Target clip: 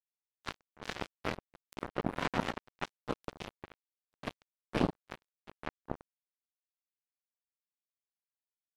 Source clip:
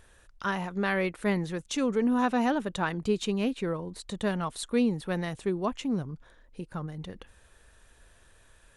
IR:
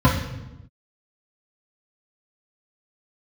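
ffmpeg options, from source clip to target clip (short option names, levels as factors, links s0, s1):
-filter_complex "[0:a]afftfilt=real='hypot(re,im)*cos(2*PI*random(0))':imag='hypot(re,im)*sin(2*PI*random(1))':win_size=512:overlap=0.75,asplit=4[s0][s1][s2][s3];[s1]asetrate=29433,aresample=44100,atempo=1.49831,volume=0.178[s4];[s2]asetrate=55563,aresample=44100,atempo=0.793701,volume=0.251[s5];[s3]asetrate=88200,aresample=44100,atempo=0.5,volume=0.2[s6];[s0][s4][s5][s6]amix=inputs=4:normalize=0,acrusher=bits=3:mix=0:aa=0.5,volume=1.19"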